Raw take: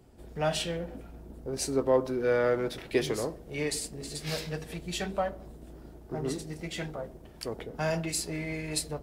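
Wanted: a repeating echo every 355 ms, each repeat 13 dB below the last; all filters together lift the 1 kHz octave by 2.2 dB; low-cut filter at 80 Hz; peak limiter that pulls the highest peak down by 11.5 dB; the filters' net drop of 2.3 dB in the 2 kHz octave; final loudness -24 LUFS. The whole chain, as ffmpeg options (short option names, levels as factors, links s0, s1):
-af "highpass=80,equalizer=f=1000:t=o:g=4,equalizer=f=2000:t=o:g=-4.5,alimiter=limit=0.0668:level=0:latency=1,aecho=1:1:355|710|1065:0.224|0.0493|0.0108,volume=3.55"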